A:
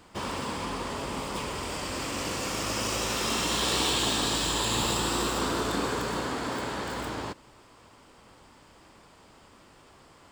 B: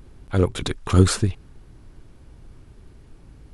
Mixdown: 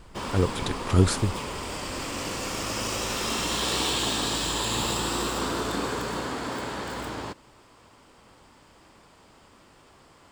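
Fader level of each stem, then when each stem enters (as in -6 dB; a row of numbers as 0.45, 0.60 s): 0.0, -4.5 dB; 0.00, 0.00 s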